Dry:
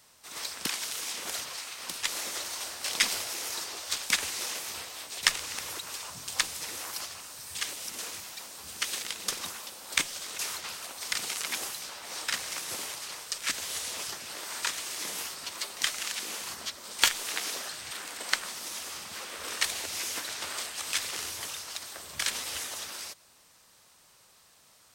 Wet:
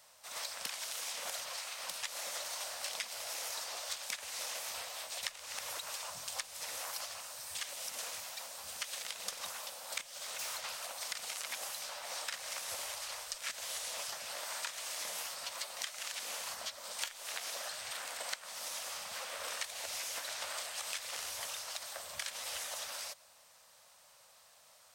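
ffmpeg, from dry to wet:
-filter_complex "[0:a]asettb=1/sr,asplit=3[s0][s1][s2];[s0]atrim=end=10.014[s3];[s1]atrim=start=10.01:end=10.56,asetpts=PTS-STARTPTS,afade=t=in:d=0.004:c=qsin,afade=t=out:st=0.546:d=0.004:c=qsin,asoftclip=type=hard:threshold=0.02[s4];[s2]atrim=start=10.556[s5];[s3][s4]acrossfade=d=0.004:c1=hsin:c2=qsin[s6];[s6][s5]acrossfade=d=0.004:c1=qsin:c2=hsin,asplit=3[s7][s8][s9];[s7]afade=t=out:st=12.66:d=0.02[s10];[s8]asubboost=boost=5:cutoff=74,afade=t=in:st=12.66:d=0.02,afade=t=out:st=13.36:d=0.02[s11];[s9]afade=t=in:st=13.36:d=0.02[s12];[s10][s11][s12]amix=inputs=3:normalize=0,lowshelf=f=460:t=q:w=3:g=-7,acompressor=threshold=0.02:ratio=12,volume=0.75"

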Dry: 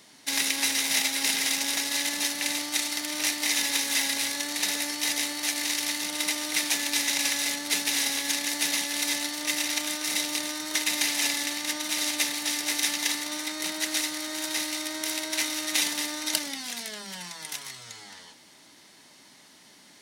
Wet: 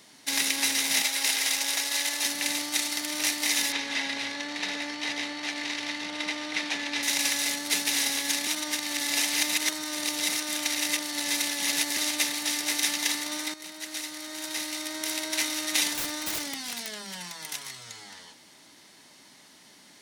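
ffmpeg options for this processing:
-filter_complex "[0:a]asettb=1/sr,asplit=3[s0][s1][s2];[s0]atrim=end=1.024[s3];[s1]atrim=start=1.02:end=2.26,asetpts=PTS-STARTPTS,afade=t=in:d=0.004:c=qsin,afade=t=out:st=1.236:d=0.004:c=qsin,highpass=410[s4];[s2]atrim=start=2.256[s5];[s3][s4]acrossfade=d=0.004:c1=hsin:c2=qsin[s6];[s6][s5]acrossfade=d=0.004:c1=qsin:c2=hsin,asettb=1/sr,asplit=3[s7][s8][s9];[s7]atrim=end=3.724[s10];[s8]atrim=start=3.72:end=7.03,asetpts=PTS-STARTPTS,afade=t=in:d=0.004:c=qsin,afade=t=out:st=3.306:d=0.004:c=qsin,lowpass=3600[s11];[s9]atrim=start=7.026[s12];[s10][s11]acrossfade=d=0.004:c1=hsin:c2=qsin[s13];[s13][s12]acrossfade=d=0.004:c1=qsin:c2=hsin,asettb=1/sr,asplit=3[s14][s15][s16];[s14]atrim=end=15.944[s17];[s15]atrim=start=15.94:end=17.52,asetpts=PTS-STARTPTS,afade=t=in:d=0.004:c=qsin,afade=t=out:st=1.576:d=0.004:c=qsin,aeval=exprs='(mod(15.8*val(0)+1,2)-1)/15.8':c=same[s18];[s16]atrim=start=17.516[s19];[s17][s18]acrossfade=d=0.004:c1=hsin:c2=qsin[s20];[s20][s19]acrossfade=d=0.004:c1=qsin:c2=hsin,asplit=4[s21][s22][s23][s24];[s21]atrim=end=8.472[s25];[s22]atrim=start=8.468:end=11.972,asetpts=PTS-STARTPTS,areverse[s26];[s23]atrim=start=11.968:end=13.54,asetpts=PTS-STARTPTS,afade=t=out:st=1.568:d=0.004:c=hsin:silence=0.237137[s27];[s24]atrim=start=13.54,asetpts=PTS-STARTPTS,afade=t=in:d=1.73:silence=0.237137[s28];[s25][s26]acrossfade=d=0.004:c1=hsin:c2=hsin[s29];[s27][s28]concat=n=2:v=0:a=1[s30];[s29][s30]acrossfade=d=0.004:c1=hsin:c2=hsin"

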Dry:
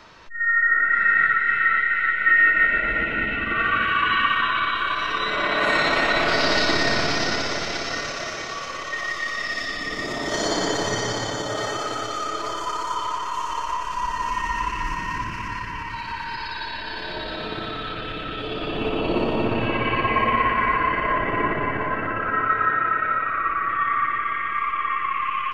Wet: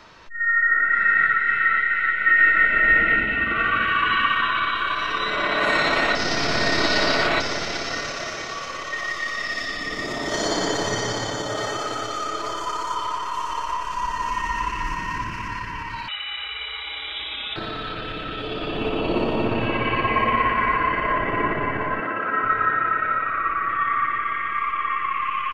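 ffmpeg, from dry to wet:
-filter_complex "[0:a]asplit=2[s0][s1];[s1]afade=t=in:st=1.89:d=0.01,afade=t=out:st=2.71:d=0.01,aecho=0:1:490|980|1470|1960|2450:0.749894|0.262463|0.091862|0.0321517|0.0112531[s2];[s0][s2]amix=inputs=2:normalize=0,asettb=1/sr,asplit=3[s3][s4][s5];[s3]atrim=end=12.954[s6];[s4]atrim=start=12.95:end=13.87,asetpts=PTS-STARTPTS,afade=t=in:d=0.004:c=qsin,afade=t=out:st=0.916:d=0.004:c=qsin,bandreject=f=6700:w=12[s7];[s5]atrim=start=13.866[s8];[s6][s7]acrossfade=d=0.004:c1=hsin:c2=qsin[s9];[s9][s8]acrossfade=d=0.004:c1=qsin:c2=hsin,asettb=1/sr,asplit=3[s10][s11][s12];[s10]atrim=end=16.084[s13];[s11]atrim=start=16.08:end=17.56,asetpts=PTS-STARTPTS,afade=t=in:d=0.004:c=qsin,afade=t=out:st=1.476:d=0.004:c=qsin,lowpass=f=3300:t=q:w=0.5098,lowpass=f=3300:t=q:w=0.6013,lowpass=f=3300:t=q:w=0.9,lowpass=f=3300:t=q:w=2.563,afreqshift=-3900[s14];[s12]atrim=start=17.556[s15];[s13][s14]acrossfade=d=0.004:c1=hsin:c2=qsin[s16];[s16][s15]acrossfade=d=0.004:c1=qsin:c2=hsin,asettb=1/sr,asplit=3[s17][s18][s19];[s17]atrim=end=22.004[s20];[s18]atrim=start=22:end=22.44,asetpts=PTS-STARTPTS,afade=t=in:d=0.004:c=qsin,afade=t=out:st=0.436:d=0.004:c=qsin,highpass=200[s21];[s19]atrim=start=22.436[s22];[s20][s21]acrossfade=d=0.004:c1=hsin:c2=qsin[s23];[s23][s22]acrossfade=d=0.004:c1=qsin:c2=hsin,asplit=3[s24][s25][s26];[s24]atrim=end=6.152[s27];[s25]atrim=start=6.148:end=7.402,asetpts=PTS-STARTPTS,areverse[s28];[s26]atrim=start=7.398[s29];[s27][s28]acrossfade=d=0.004:c1=hsin:c2=hsin[s30];[s30][s29]acrossfade=d=0.004:c1=hsin:c2=hsin"

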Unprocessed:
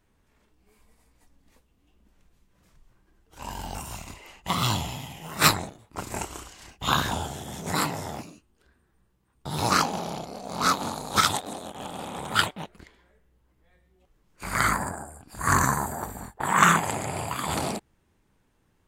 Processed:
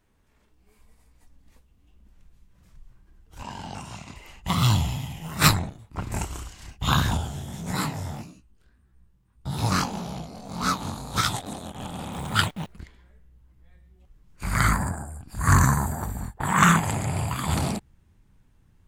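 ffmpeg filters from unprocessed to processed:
-filter_complex "[0:a]asettb=1/sr,asplit=3[s0][s1][s2];[s0]atrim=end=3.424[s3];[s1]atrim=start=3.42:end=4.16,asetpts=PTS-STARTPTS,afade=t=in:d=0.004:c=qsin,afade=t=out:st=0.736:d=0.004:c=qsin,highpass=160,lowpass=5800[s4];[s2]atrim=start=4.156[s5];[s3][s4]acrossfade=d=0.004:c1=hsin:c2=qsin[s6];[s6][s5]acrossfade=d=0.004:c1=qsin:c2=hsin,asettb=1/sr,asplit=3[s7][s8][s9];[s7]atrim=end=5.594[s10];[s8]atrim=start=5.59:end=6.12,asetpts=PTS-STARTPTS,afade=t=in:d=0.004:c=qsin,afade=t=out:st=0.526:d=0.004:c=qsin,acrossover=split=3800[s11][s12];[s12]acompressor=threshold=0.00141:ratio=4:attack=1:release=60[s13];[s11][s13]amix=inputs=2:normalize=0[s14];[s9]atrim=start=6.116[s15];[s10][s14]acrossfade=d=0.004:c1=hsin:c2=qsin[s16];[s16][s15]acrossfade=d=0.004:c1=qsin:c2=hsin,asettb=1/sr,asplit=3[s17][s18][s19];[s17]atrim=end=7.174[s20];[s18]atrim=start=7.17:end=11.42,asetpts=PTS-STARTPTS,afade=t=in:d=0.004:c=qsin,afade=t=out:st=4.246:d=0.004:c=qsin,flanger=delay=15.5:depth=6.9:speed=1.7[s21];[s19]atrim=start=11.416[s22];[s20][s21]acrossfade=d=0.004:c1=hsin:c2=qsin[s23];[s23][s22]acrossfade=d=0.004:c1=qsin:c2=hsin,asettb=1/sr,asplit=3[s24][s25][s26];[s24]atrim=end=12.124[s27];[s25]atrim=start=12.12:end=12.73,asetpts=PTS-STARTPTS,afade=t=in:d=0.004:c=qsin,afade=t=out:st=0.606:d=0.004:c=qsin,acrusher=bits=9:dc=4:mix=0:aa=0.000001[s28];[s26]atrim=start=12.726[s29];[s27][s28]acrossfade=d=0.004:c1=hsin:c2=qsin[s30];[s30][s29]acrossfade=d=0.004:c1=qsin:c2=hsin,asubboost=boost=3.5:cutoff=200"

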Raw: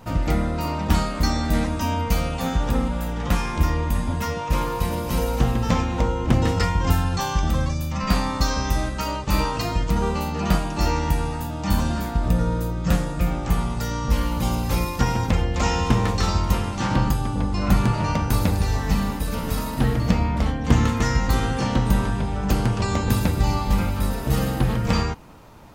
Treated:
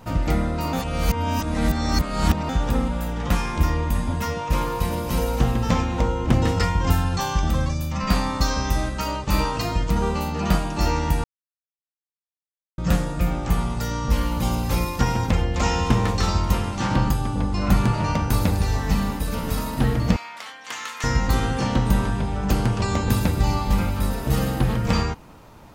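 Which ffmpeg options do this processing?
-filter_complex "[0:a]asettb=1/sr,asplit=3[s0][s1][s2];[s0]atrim=end=20.164[s3];[s1]atrim=start=20.16:end=21.04,asetpts=PTS-STARTPTS,afade=t=in:d=0.004:c=qsin,afade=t=out:st=0.876:d=0.004:c=qsin,highpass=1400[s4];[s2]atrim=start=21.036[s5];[s3][s4]acrossfade=d=0.004:c1=hsin:c2=qsin[s6];[s6][s5]acrossfade=d=0.004:c1=qsin:c2=hsin,asplit=5[s7][s8][s9][s10][s11];[s7]atrim=end=0.732[s12];[s8]atrim=start=0.728:end=2.492,asetpts=PTS-STARTPTS,areverse[s13];[s9]atrim=start=2.488:end=11.24,asetpts=PTS-STARTPTS,afade=t=out:st=8.748:d=0.004:c=hsin[s14];[s10]atrim=start=11.24:end=12.78,asetpts=PTS-STARTPTS,volume=0[s15];[s11]atrim=start=12.78,asetpts=PTS-STARTPTS,afade=t=in:d=0.004:c=hsin[s16];[s12][s13]acrossfade=d=0.004:c1=hsin:c2=hsin[s17];[s14][s15][s16]concat=n=3:v=0:a=1[s18];[s17][s18]acrossfade=d=0.004:c1=hsin:c2=hsin"

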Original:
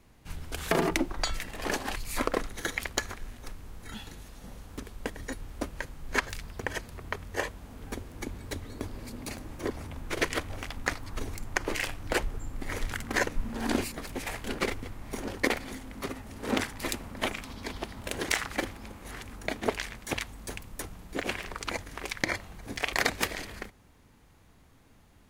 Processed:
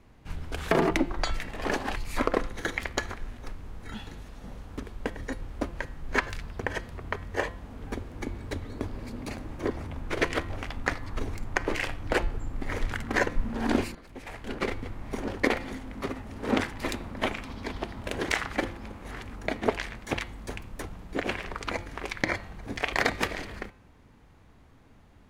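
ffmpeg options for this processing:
-filter_complex "[0:a]asplit=2[s0][s1];[s0]atrim=end=13.95,asetpts=PTS-STARTPTS,afade=t=out:st=13.946:d=0.004:c=hsin:silence=0.125893[s2];[s1]atrim=start=13.95,asetpts=PTS-STARTPTS,afade=t=in:d=0.96:silence=0.125893[s3];[s2][s3]concat=n=2:v=0:a=1,lowpass=f=2500:p=1,bandreject=f=172.2:t=h:w=4,bandreject=f=344.4:t=h:w=4,bandreject=f=516.6:t=h:w=4,bandreject=f=688.8:t=h:w=4,bandreject=f=861:t=h:w=4,bandreject=f=1033.2:t=h:w=4,bandreject=f=1205.4:t=h:w=4,bandreject=f=1377.6:t=h:w=4,bandreject=f=1549.8:t=h:w=4,bandreject=f=1722:t=h:w=4,bandreject=f=1894.2:t=h:w=4,bandreject=f=2066.4:t=h:w=4,bandreject=f=2238.6:t=h:w=4,bandreject=f=2410.8:t=h:w=4,bandreject=f=2583:t=h:w=4,bandreject=f=2755.2:t=h:w=4,bandreject=f=2927.4:t=h:w=4,bandreject=f=3099.6:t=h:w=4,bandreject=f=3271.8:t=h:w=4,bandreject=f=3444:t=h:w=4,bandreject=f=3616.2:t=h:w=4,bandreject=f=3788.4:t=h:w=4,bandreject=f=3960.6:t=h:w=4,bandreject=f=4132.8:t=h:w=4,bandreject=f=4305:t=h:w=4,bandreject=f=4477.2:t=h:w=4,bandreject=f=4649.4:t=h:w=4,volume=1.5"

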